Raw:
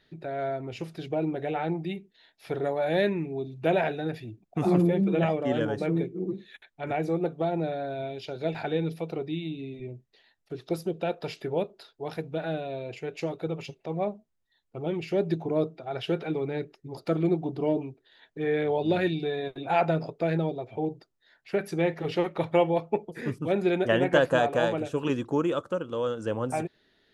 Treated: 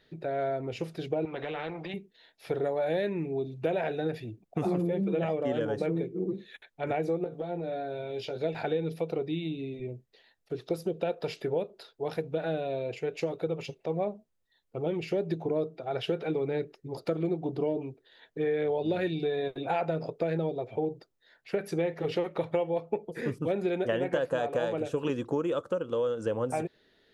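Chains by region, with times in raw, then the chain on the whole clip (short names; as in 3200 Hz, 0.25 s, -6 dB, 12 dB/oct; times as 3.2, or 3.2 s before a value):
1.25–1.94 BPF 120–2600 Hz + compressor 2.5:1, threshold -32 dBFS + spectral compressor 2:1
7.24–8.38 compressor, threshold -34 dBFS + doubler 17 ms -5 dB
whole clip: bell 490 Hz +6 dB 0.47 oct; compressor 5:1, threshold -26 dBFS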